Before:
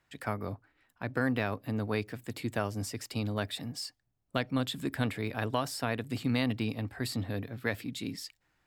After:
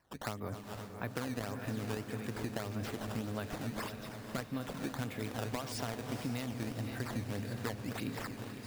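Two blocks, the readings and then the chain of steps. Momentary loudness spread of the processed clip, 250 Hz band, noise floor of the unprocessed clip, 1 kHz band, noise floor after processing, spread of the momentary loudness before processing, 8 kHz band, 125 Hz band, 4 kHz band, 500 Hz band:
4 LU, -5.5 dB, -77 dBFS, -4.5 dB, -48 dBFS, 9 LU, -3.0 dB, -4.5 dB, -7.0 dB, -5.5 dB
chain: backward echo that repeats 128 ms, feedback 80%, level -13.5 dB; compression, threshold -36 dBFS, peak gain reduction 11.5 dB; decimation with a swept rate 12×, swing 160% 1.7 Hz; echo that smears into a reverb 497 ms, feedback 55%, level -10 dB; trim +1 dB

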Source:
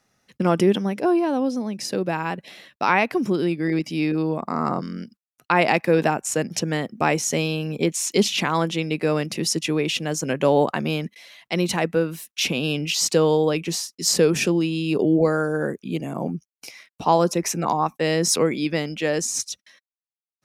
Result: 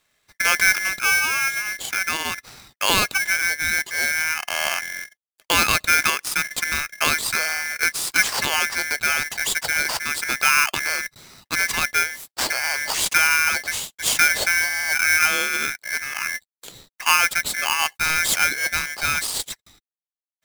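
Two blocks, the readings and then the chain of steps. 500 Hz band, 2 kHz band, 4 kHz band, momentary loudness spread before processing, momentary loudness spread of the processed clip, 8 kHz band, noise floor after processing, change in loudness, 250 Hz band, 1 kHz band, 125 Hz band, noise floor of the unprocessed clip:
-14.5 dB, +11.0 dB, +4.5 dB, 10 LU, 9 LU, +4.5 dB, under -85 dBFS, +2.5 dB, -17.5 dB, 0.0 dB, -14.5 dB, under -85 dBFS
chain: short-mantissa float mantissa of 2-bit; polarity switched at an audio rate 1.9 kHz

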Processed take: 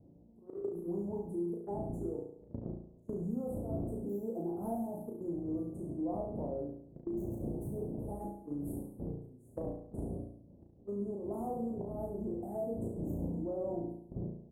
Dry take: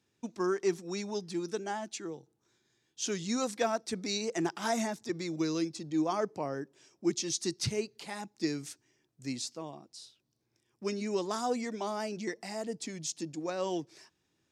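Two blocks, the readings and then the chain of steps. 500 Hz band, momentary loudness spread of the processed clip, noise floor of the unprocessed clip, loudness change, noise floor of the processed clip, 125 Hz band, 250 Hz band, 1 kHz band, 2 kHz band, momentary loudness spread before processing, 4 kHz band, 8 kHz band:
-4.0 dB, 7 LU, -78 dBFS, -5.0 dB, -59 dBFS, +2.5 dB, -2.5 dB, -9.0 dB, under -35 dB, 12 LU, under -40 dB, under -25 dB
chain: spectral sustain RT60 0.33 s; wind noise 230 Hz -36 dBFS; hum notches 60/120/180/240/300/360/420/480 Hz; slow attack 231 ms; high-pass 63 Hz 6 dB/octave; doubling 17 ms -9.5 dB; Chebyshev shaper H 5 -24 dB, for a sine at -16 dBFS; inverse Chebyshev band-stop 2–5.1 kHz, stop band 70 dB; gate -41 dBFS, range -24 dB; compression 10:1, threshold -48 dBFS, peak gain reduction 22.5 dB; on a send: flutter echo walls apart 6 m, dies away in 0.66 s; on the sum: trim +10 dB

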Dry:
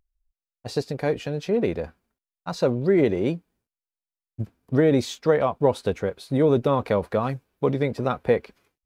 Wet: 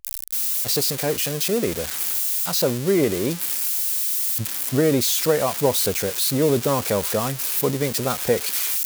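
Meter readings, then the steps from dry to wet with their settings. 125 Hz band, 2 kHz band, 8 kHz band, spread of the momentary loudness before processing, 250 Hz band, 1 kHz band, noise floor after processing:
0.0 dB, +4.0 dB, +23.0 dB, 15 LU, 0.0 dB, +0.5 dB, -31 dBFS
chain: zero-crossing glitches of -14.5 dBFS; reverse; upward compressor, threshold -22 dBFS; reverse

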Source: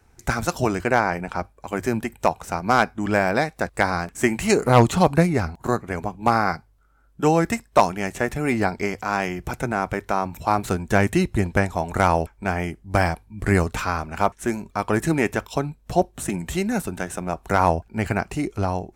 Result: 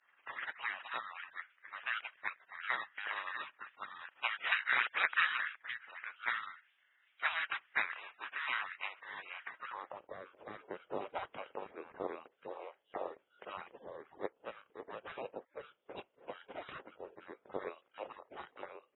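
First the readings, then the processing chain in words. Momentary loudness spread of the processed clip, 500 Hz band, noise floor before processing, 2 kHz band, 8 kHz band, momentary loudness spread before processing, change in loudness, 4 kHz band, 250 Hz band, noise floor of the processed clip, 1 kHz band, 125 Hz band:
18 LU, -24.0 dB, -57 dBFS, -10.0 dB, under -40 dB, 8 LU, -16.5 dB, -9.0 dB, -33.0 dB, -76 dBFS, -20.0 dB, under -40 dB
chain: spectral gate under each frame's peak -30 dB weak; frequency inversion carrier 3.8 kHz; band-pass sweep 1.7 kHz -> 470 Hz, 9.51–10.05 s; trim +14.5 dB

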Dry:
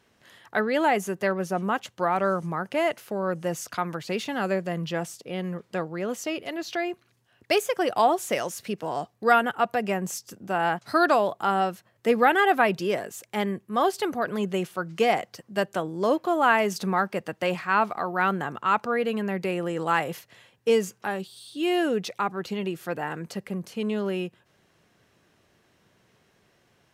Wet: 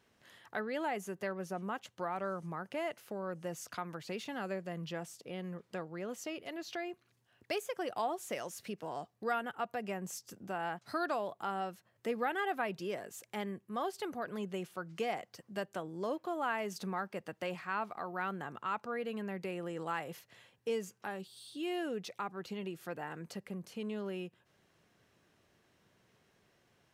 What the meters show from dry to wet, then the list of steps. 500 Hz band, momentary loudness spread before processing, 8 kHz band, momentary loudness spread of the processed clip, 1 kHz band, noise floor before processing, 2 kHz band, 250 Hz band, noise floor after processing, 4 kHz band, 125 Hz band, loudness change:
-13.0 dB, 11 LU, -11.0 dB, 8 LU, -14.0 dB, -66 dBFS, -13.5 dB, -12.5 dB, -74 dBFS, -12.5 dB, -12.0 dB, -13.0 dB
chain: compression 1.5:1, threshold -39 dBFS, peak gain reduction 9 dB; trim -6.5 dB

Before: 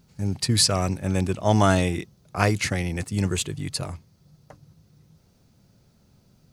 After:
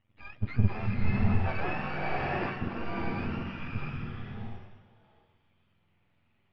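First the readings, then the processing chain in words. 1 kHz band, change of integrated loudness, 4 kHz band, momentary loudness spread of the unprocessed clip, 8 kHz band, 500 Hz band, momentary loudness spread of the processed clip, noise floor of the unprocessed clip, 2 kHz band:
-7.0 dB, -9.0 dB, -21.0 dB, 13 LU, under -40 dB, -11.0 dB, 12 LU, -61 dBFS, -5.5 dB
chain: spectrum inverted on a logarithmic axis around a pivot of 700 Hz; half-wave rectifier; low-pass 2.5 kHz 24 dB/octave; swelling reverb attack 650 ms, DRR -4 dB; trim -8 dB

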